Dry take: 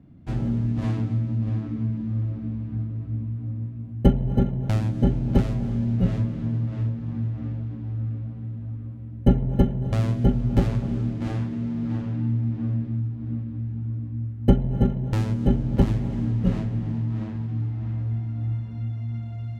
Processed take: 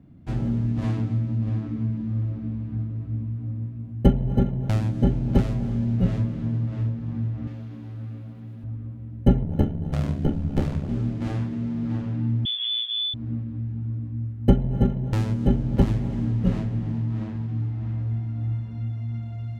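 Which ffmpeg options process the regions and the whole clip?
ffmpeg -i in.wav -filter_complex "[0:a]asettb=1/sr,asplit=3[link_01][link_02][link_03];[link_01]atrim=end=7.474[link_04];[link_02]atrim=start=7.47:end=8.64,asetpts=PTS-STARTPTS,afade=type=in:duration=0.004:curve=qsin,afade=type=out:start_time=1.166:duration=0.004:curve=qsin,highpass=frequency=280:poles=1,highshelf=frequency=3000:gain=9.5,asplit=2[link_05][link_06];[link_06]adelay=35,volume=-11dB[link_07];[link_05][link_07]amix=inputs=2:normalize=0,atrim=end_sample=51597[link_08];[link_03]atrim=start=8.636[link_09];[link_04][link_08]acrossfade=duration=0.004:curve1=hsin:curve2=qsin[link_10];[link_10][link_09]acrossfade=duration=0.004:curve1=qsin:curve2=hsin,asettb=1/sr,asplit=3[link_11][link_12][link_13];[link_11]atrim=end=9.434[link_14];[link_12]atrim=start=9.43:end=10.89,asetpts=PTS-STARTPTS,afade=type=in:duration=0.004:curve=qsin,afade=type=out:start_time=1.456:duration=0.004:curve=qsin,aeval=exprs='val(0)*sin(2*PI*35*n/s)':channel_layout=same,asplit=2[link_15][link_16];[link_16]adelay=35,volume=-12.5dB[link_17];[link_15][link_17]amix=inputs=2:normalize=0,atrim=end_sample=64386[link_18];[link_13]atrim=start=10.886[link_19];[link_14][link_18]acrossfade=duration=0.004:curve1=hsin:curve2=qsin[link_20];[link_20][link_19]acrossfade=duration=0.004:curve1=qsin:curve2=hsin,asettb=1/sr,asplit=3[link_21][link_22][link_23];[link_21]atrim=end=12.454[link_24];[link_22]atrim=start=12.45:end=13.14,asetpts=PTS-STARTPTS,afade=type=in:duration=0.004:curve=qsin,afade=type=out:start_time=0.686:duration=0.004:curve=qsin,highpass=frequency=63:width=0.5412,highpass=frequency=63:width=1.3066,asoftclip=type=hard:threshold=-23.5dB,lowpass=frequency=3100:width_type=q:width=0.5098,lowpass=frequency=3100:width_type=q:width=0.6013,lowpass=frequency=3100:width_type=q:width=0.9,lowpass=frequency=3100:width_type=q:width=2.563,afreqshift=-3600[link_25];[link_23]atrim=start=13.136[link_26];[link_24][link_25]acrossfade=duration=0.004:curve1=hsin:curve2=qsin[link_27];[link_27][link_26]acrossfade=duration=0.004:curve1=qsin:curve2=hsin" out.wav

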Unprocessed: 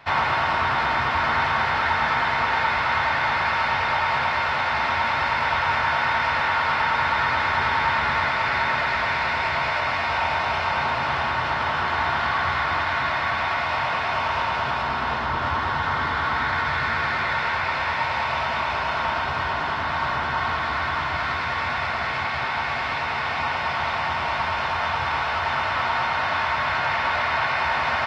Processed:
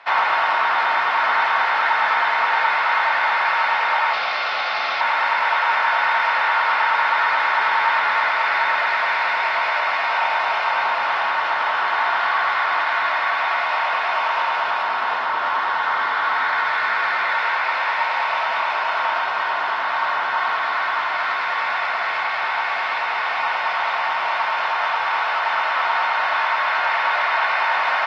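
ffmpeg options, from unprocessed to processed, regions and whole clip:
ffmpeg -i in.wav -filter_complex "[0:a]asettb=1/sr,asplit=3[link_01][link_02][link_03];[link_01]atrim=end=4.134[link_04];[link_02]atrim=start=4.13:end=5.01,asetpts=PTS-STARTPTS,afade=type=in:duration=0.004:curve=qsin,afade=type=out:start_time=0.876:duration=0.004:curve=qsin,lowpass=frequency=5100:width_type=q:width=2,equalizer=frequency=1700:width_type=o:width=0.61:gain=-5.5,bandreject=frequency=950:width=5[link_05];[link_03]atrim=start=5.006[link_06];[link_04][link_05]acrossfade=duration=0.004:curve1=hsin:curve2=qsin[link_07];[link_07][link_06]acrossfade=duration=0.004:curve1=qsin:curve2=hsin,highpass=650,aemphasis=mode=reproduction:type=50fm,volume=4.5dB" out.wav

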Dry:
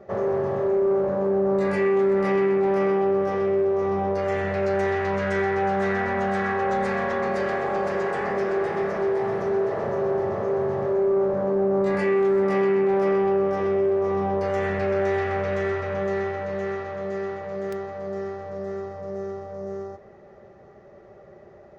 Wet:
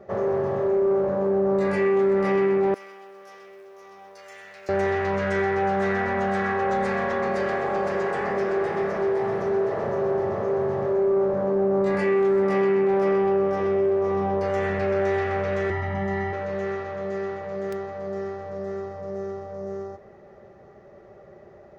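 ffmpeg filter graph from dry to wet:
ffmpeg -i in.wav -filter_complex "[0:a]asettb=1/sr,asplit=3[link_01][link_02][link_03];[link_01]atrim=end=2.744[link_04];[link_02]atrim=start=2.74:end=4.69,asetpts=PTS-STARTPTS,afade=type=in:duration=0.004:curve=qsin,afade=type=out:start_time=1.946:duration=0.004:curve=qsin,aderivative,acrusher=bits=8:mode=log:mix=0:aa=0.000001[link_05];[link_03]atrim=start=4.686[link_06];[link_04][link_05]acrossfade=duration=0.004:curve1=hsin:curve2=qsin[link_07];[link_07][link_06]acrossfade=duration=0.004:curve1=qsin:curve2=hsin,asettb=1/sr,asplit=3[link_08][link_09][link_10];[link_08]atrim=end=15.704[link_11];[link_09]atrim=start=15.7:end=16.33,asetpts=PTS-STARTPTS,afade=type=in:duration=0.004:curve=qsin,afade=type=out:start_time=0.626:duration=0.004:curve=qsin,asuperstop=centerf=1100:order=8:qfactor=6.2,highshelf=frequency=3300:gain=-9.5,aecho=1:1:1:0.98,atrim=end_sample=27783[link_12];[link_10]atrim=start=16.326[link_13];[link_11][link_12]acrossfade=duration=0.004:curve1=hsin:curve2=qsin[link_14];[link_14][link_13]acrossfade=duration=0.004:curve1=qsin:curve2=hsin" out.wav

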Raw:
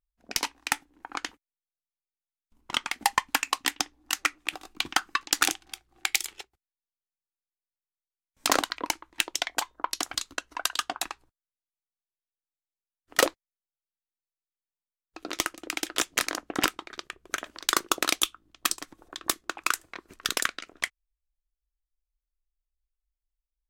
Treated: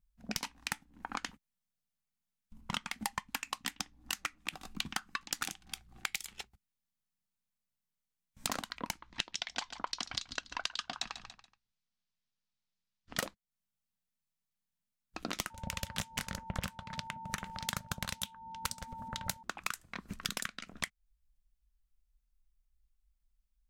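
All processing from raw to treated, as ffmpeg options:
ffmpeg -i in.wav -filter_complex "[0:a]asettb=1/sr,asplit=3[link_01][link_02][link_03];[link_01]atrim=end=8.994[link_04];[link_02]atrim=start=8.99:end=13.18,asetpts=PTS-STARTPTS,afade=type=in:duration=0.004:curve=qsin,afade=type=out:start_time=4.186:duration=0.004:curve=qsin,lowpass=frequency=5100:width=0.5412,lowpass=frequency=5100:width=1.3066,aemphasis=mode=production:type=75fm,aecho=1:1:142|284|426:0.168|0.0504|0.0151,atrim=end_sample=184779[link_05];[link_03]atrim=start=13.176[link_06];[link_04][link_05]acrossfade=duration=0.004:curve1=hsin:curve2=qsin[link_07];[link_07][link_06]acrossfade=duration=0.004:curve1=qsin:curve2=hsin,asettb=1/sr,asplit=3[link_08][link_09][link_10];[link_08]atrim=end=15.504[link_11];[link_09]atrim=start=15.5:end=19.43,asetpts=PTS-STARTPTS,afade=type=in:duration=0.004:curve=qsin,afade=type=out:start_time=3.926:duration=0.004:curve=qsin,aeval=exprs='val(0)*sin(2*PI*240*n/s)':channel_layout=same,aeval=exprs='val(0)+0.00631*sin(2*PI*900*n/s)':channel_layout=same[link_12];[link_10]atrim=start=19.426[link_13];[link_11][link_12]acrossfade=duration=0.004:curve1=hsin:curve2=qsin[link_14];[link_14][link_13]acrossfade=duration=0.004:curve1=qsin:curve2=hsin,lowshelf=frequency=260:width_type=q:width=3:gain=8.5,acompressor=threshold=-36dB:ratio=6,volume=2dB" out.wav

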